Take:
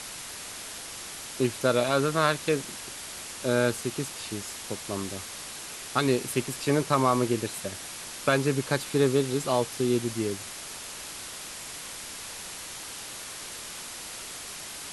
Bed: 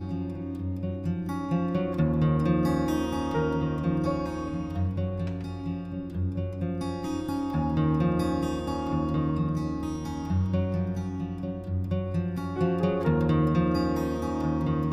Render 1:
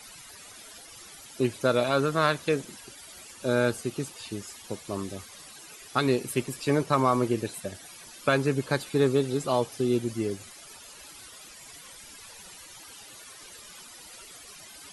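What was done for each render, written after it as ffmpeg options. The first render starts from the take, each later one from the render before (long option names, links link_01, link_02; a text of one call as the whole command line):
ffmpeg -i in.wav -af "afftdn=noise_reduction=14:noise_floor=-40" out.wav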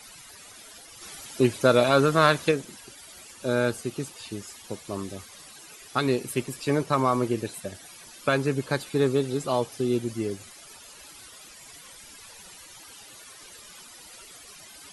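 ffmpeg -i in.wav -filter_complex "[0:a]asplit=3[link_01][link_02][link_03];[link_01]afade=type=out:start_time=1.01:duration=0.02[link_04];[link_02]acontrast=25,afade=type=in:start_time=1.01:duration=0.02,afade=type=out:start_time=2.5:duration=0.02[link_05];[link_03]afade=type=in:start_time=2.5:duration=0.02[link_06];[link_04][link_05][link_06]amix=inputs=3:normalize=0" out.wav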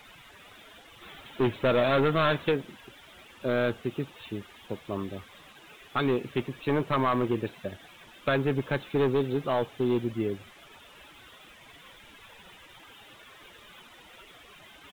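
ffmpeg -i in.wav -af "aresample=8000,volume=20dB,asoftclip=hard,volume=-20dB,aresample=44100,acrusher=bits=8:mix=0:aa=0.5" out.wav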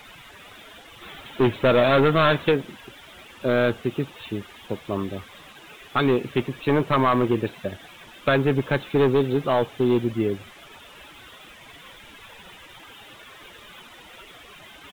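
ffmpeg -i in.wav -af "volume=6dB" out.wav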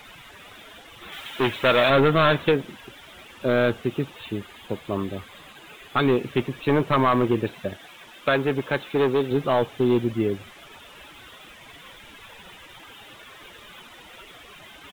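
ffmpeg -i in.wav -filter_complex "[0:a]asettb=1/sr,asplit=3[link_01][link_02][link_03];[link_01]atrim=end=1.124[link_04];[link_02]atrim=start=1.12:end=1.9,asetpts=PTS-STARTPTS,afade=type=in:duration=0.004:curve=qsin,afade=type=out:start_time=0.776:duration=0.004:curve=qsin,tiltshelf=frequency=790:gain=-6.5[link_05];[link_03]atrim=start=1.896[link_06];[link_04][link_05]acrossfade=duration=0.004:curve1=hsin:curve2=qsin[link_07];[link_07][link_06]acrossfade=duration=0.004:curve1=qsin:curve2=hsin,asettb=1/sr,asplit=3[link_08][link_09][link_10];[link_08]atrim=end=4.174[link_11];[link_09]atrim=start=4.17:end=6.13,asetpts=PTS-STARTPTS,afade=type=in:duration=0.004:curve=qsin,afade=type=out:start_time=1.956:duration=0.004:curve=qsin,bandreject=frequency=5600:width=9.4[link_12];[link_10]atrim=start=6.126[link_13];[link_11][link_12]acrossfade=duration=0.004:curve1=hsin:curve2=qsin[link_14];[link_14][link_13]acrossfade=duration=0.004:curve1=qsin:curve2=hsin,asettb=1/sr,asplit=3[link_15][link_16][link_17];[link_15]atrim=end=7.734[link_18];[link_16]atrim=start=7.73:end=9.31,asetpts=PTS-STARTPTS,afade=type=in:duration=0.004:curve=qsin,afade=type=out:start_time=1.576:duration=0.004:curve=qsin,lowshelf=frequency=190:gain=-10[link_19];[link_17]atrim=start=9.306[link_20];[link_18][link_19]acrossfade=duration=0.004:curve1=hsin:curve2=qsin[link_21];[link_21][link_20]acrossfade=duration=0.004:curve1=qsin:curve2=hsin" out.wav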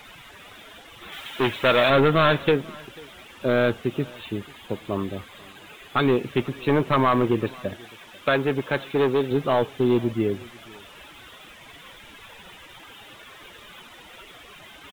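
ffmpeg -i in.wav -af "aecho=1:1:491:0.0631" out.wav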